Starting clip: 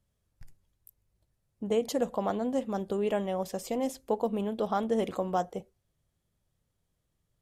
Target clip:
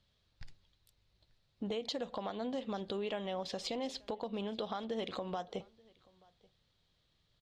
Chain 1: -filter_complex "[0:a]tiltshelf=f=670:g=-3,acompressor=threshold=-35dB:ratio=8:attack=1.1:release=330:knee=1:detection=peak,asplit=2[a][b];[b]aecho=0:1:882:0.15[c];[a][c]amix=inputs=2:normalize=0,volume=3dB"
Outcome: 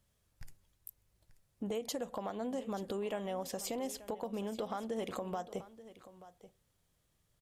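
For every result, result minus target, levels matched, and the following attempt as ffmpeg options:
echo-to-direct +10.5 dB; 4000 Hz band -5.5 dB
-filter_complex "[0:a]tiltshelf=f=670:g=-3,acompressor=threshold=-35dB:ratio=8:attack=1.1:release=330:knee=1:detection=peak,asplit=2[a][b];[b]aecho=0:1:882:0.0447[c];[a][c]amix=inputs=2:normalize=0,volume=3dB"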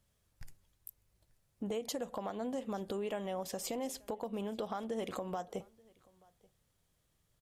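4000 Hz band -5.5 dB
-filter_complex "[0:a]lowpass=f=4k:t=q:w=3.5,tiltshelf=f=670:g=-3,acompressor=threshold=-35dB:ratio=8:attack=1.1:release=330:knee=1:detection=peak,asplit=2[a][b];[b]aecho=0:1:882:0.0447[c];[a][c]amix=inputs=2:normalize=0,volume=3dB"

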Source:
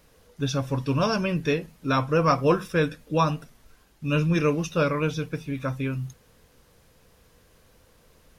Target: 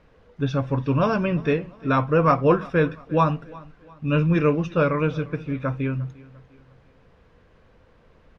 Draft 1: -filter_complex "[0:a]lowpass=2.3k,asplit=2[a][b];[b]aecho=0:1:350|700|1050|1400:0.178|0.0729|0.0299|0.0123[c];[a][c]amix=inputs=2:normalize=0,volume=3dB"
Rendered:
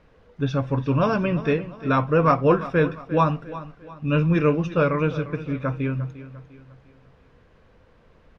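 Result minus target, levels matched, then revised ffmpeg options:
echo-to-direct +6.5 dB
-filter_complex "[0:a]lowpass=2.3k,asplit=2[a][b];[b]aecho=0:1:350|700|1050:0.0841|0.0345|0.0141[c];[a][c]amix=inputs=2:normalize=0,volume=3dB"

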